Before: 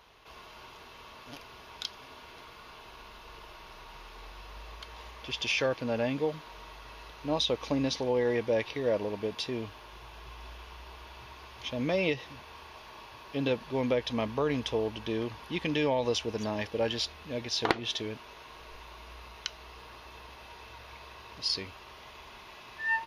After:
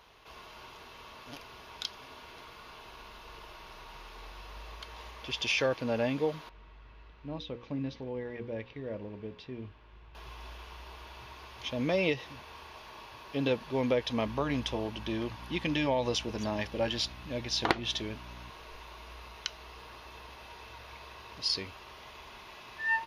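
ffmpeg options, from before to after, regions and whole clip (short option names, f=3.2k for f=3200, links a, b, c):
-filter_complex "[0:a]asettb=1/sr,asplit=3[a][b][c];[a]atrim=end=6.494[d];[b]atrim=start=6.49:end=10.15,asetpts=PTS-STARTPTS,afade=t=in:d=0.004:c=qsin,afade=t=out:st=3.656:d=0.004:c=qsin,lowpass=1.8k,equalizer=f=790:w=0.47:g=-13,bandreject=f=60:t=h:w=6,bandreject=f=120:t=h:w=6,bandreject=f=180:t=h:w=6,bandreject=f=240:t=h:w=6,bandreject=f=300:t=h:w=6,bandreject=f=360:t=h:w=6,bandreject=f=420:t=h:w=6,bandreject=f=480:t=h:w=6,bandreject=f=540:t=h:w=6[e];[c]atrim=start=10.146[f];[d][e]acrossfade=d=0.004:c1=hsin:c2=qsin[g];[g][f]acrossfade=d=0.004:c1=qsin:c2=hsin,asettb=1/sr,asplit=3[h][i][j];[h]atrim=end=14.264[k];[i]atrim=start=14.26:end=18.5,asetpts=PTS-STARTPTS,afade=t=in:d=0.004:c=qsin,afade=t=out:st=4.236:d=0.004:c=qsin,bandreject=f=450:w=7.5,aeval=exprs='val(0)+0.00447*(sin(2*PI*60*n/s)+sin(2*PI*2*60*n/s)/2+sin(2*PI*3*60*n/s)/3+sin(2*PI*4*60*n/s)/4+sin(2*PI*5*60*n/s)/5)':c=same[l];[j]atrim=start=18.496[m];[k][l]acrossfade=d=0.004:c1=hsin:c2=qsin[n];[n][m]acrossfade=d=0.004:c1=qsin:c2=hsin"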